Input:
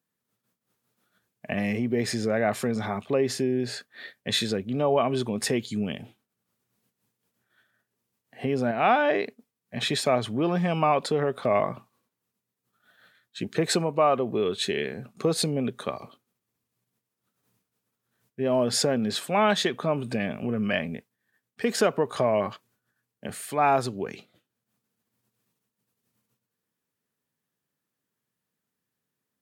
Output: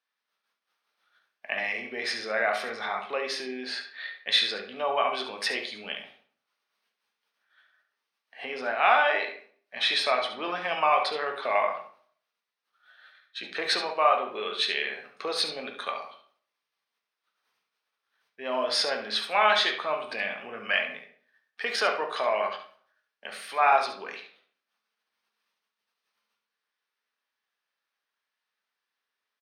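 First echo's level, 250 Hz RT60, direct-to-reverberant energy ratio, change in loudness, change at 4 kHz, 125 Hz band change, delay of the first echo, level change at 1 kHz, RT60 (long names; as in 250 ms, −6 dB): −10.0 dB, 0.55 s, 2.5 dB, −1.0 dB, +4.0 dB, below −25 dB, 70 ms, +1.5 dB, 0.50 s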